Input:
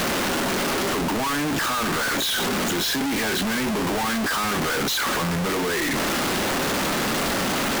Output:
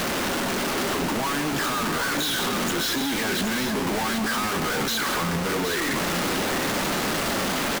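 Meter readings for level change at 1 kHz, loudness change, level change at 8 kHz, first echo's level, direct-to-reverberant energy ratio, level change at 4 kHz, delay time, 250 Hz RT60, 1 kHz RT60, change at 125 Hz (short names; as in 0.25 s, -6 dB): -1.5 dB, -1.5 dB, -1.5 dB, -11.0 dB, none, -1.5 dB, 0.171 s, none, none, -1.5 dB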